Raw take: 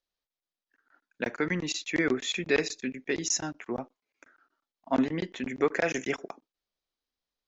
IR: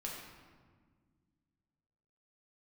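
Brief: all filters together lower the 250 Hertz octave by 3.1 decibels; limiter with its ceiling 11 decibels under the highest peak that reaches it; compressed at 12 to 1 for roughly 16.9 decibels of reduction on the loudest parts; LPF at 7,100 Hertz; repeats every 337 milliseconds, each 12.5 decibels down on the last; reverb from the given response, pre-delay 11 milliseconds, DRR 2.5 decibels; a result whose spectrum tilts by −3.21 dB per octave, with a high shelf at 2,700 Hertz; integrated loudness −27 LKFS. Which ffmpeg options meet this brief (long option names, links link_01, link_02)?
-filter_complex "[0:a]lowpass=7100,equalizer=frequency=250:width_type=o:gain=-4,highshelf=frequency=2700:gain=4.5,acompressor=threshold=-38dB:ratio=12,alimiter=level_in=11.5dB:limit=-24dB:level=0:latency=1,volume=-11.5dB,aecho=1:1:337|674|1011:0.237|0.0569|0.0137,asplit=2[link_01][link_02];[1:a]atrim=start_sample=2205,adelay=11[link_03];[link_02][link_03]afir=irnorm=-1:irlink=0,volume=-2.5dB[link_04];[link_01][link_04]amix=inputs=2:normalize=0,volume=18dB"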